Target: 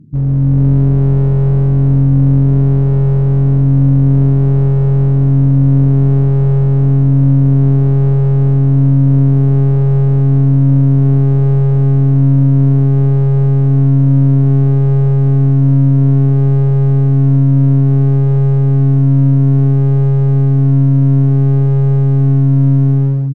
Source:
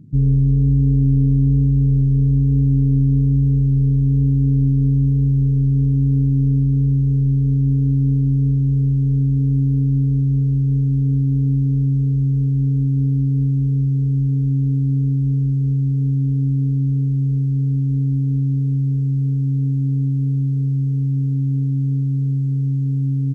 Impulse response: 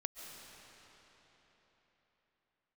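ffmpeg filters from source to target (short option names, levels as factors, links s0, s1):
-filter_complex "[0:a]equalizer=f=330:w=2.1:g=4,dynaudnorm=f=120:g=7:m=3.55,asplit=2[s0][s1];[s1]aecho=0:1:13|28:0.299|0.141[s2];[s0][s2]amix=inputs=2:normalize=0,aeval=exprs='clip(val(0),-1,0.237)':c=same,aemphasis=mode=reproduction:type=cd"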